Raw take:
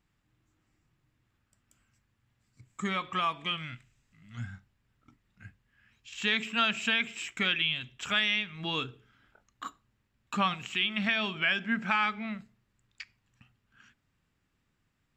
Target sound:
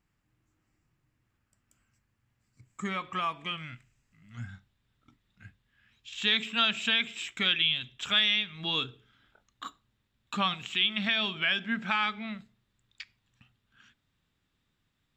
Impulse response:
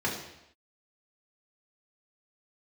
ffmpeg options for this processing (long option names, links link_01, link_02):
-af "asetnsamples=nb_out_samples=441:pad=0,asendcmd='4.49 equalizer g 9.5',equalizer=frequency=3600:width_type=o:width=0.38:gain=-4,volume=-1.5dB"